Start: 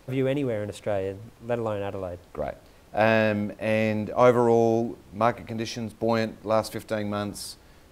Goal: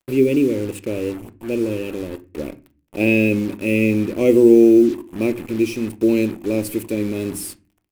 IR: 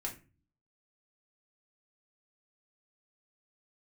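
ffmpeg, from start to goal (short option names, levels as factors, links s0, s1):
-filter_complex "[0:a]firequalizer=gain_entry='entry(150,0);entry(350,13);entry(690,-16);entry(1500,-24);entry(2500,10);entry(3600,-7);entry(8300,9);entry(13000,13)':delay=0.05:min_phase=1,acrusher=bits=5:mix=0:aa=0.5,asplit=2[s0][s1];[1:a]atrim=start_sample=2205,lowpass=4500[s2];[s1][s2]afir=irnorm=-1:irlink=0,volume=0.501[s3];[s0][s3]amix=inputs=2:normalize=0"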